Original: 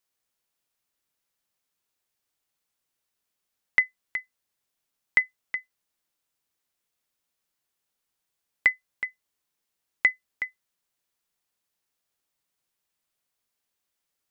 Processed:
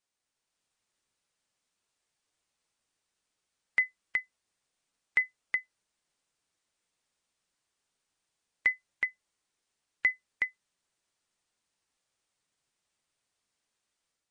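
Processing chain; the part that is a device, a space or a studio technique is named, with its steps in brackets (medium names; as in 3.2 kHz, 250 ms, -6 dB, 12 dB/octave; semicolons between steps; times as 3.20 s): low-bitrate web radio (level rider gain up to 4.5 dB; peak limiter -13 dBFS, peak gain reduction 8.5 dB; trim -2.5 dB; MP3 40 kbps 22.05 kHz)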